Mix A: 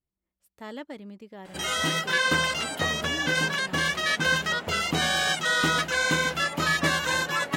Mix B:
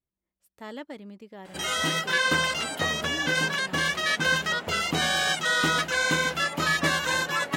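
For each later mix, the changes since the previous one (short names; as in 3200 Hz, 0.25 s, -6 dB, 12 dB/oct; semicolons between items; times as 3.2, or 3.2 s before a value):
master: add low shelf 110 Hz -4 dB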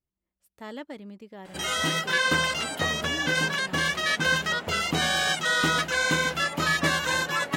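master: add low shelf 110 Hz +4 dB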